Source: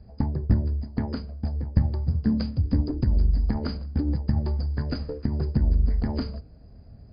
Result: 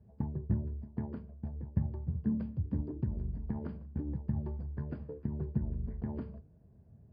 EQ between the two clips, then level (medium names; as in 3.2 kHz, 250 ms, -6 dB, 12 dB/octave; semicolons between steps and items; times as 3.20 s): distance through air 450 m; cabinet simulation 110–3100 Hz, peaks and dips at 270 Hz -9 dB, 520 Hz -6 dB, 740 Hz -7 dB, 1.3 kHz -9 dB; peaking EQ 2.1 kHz -8 dB 0.72 oct; -5.0 dB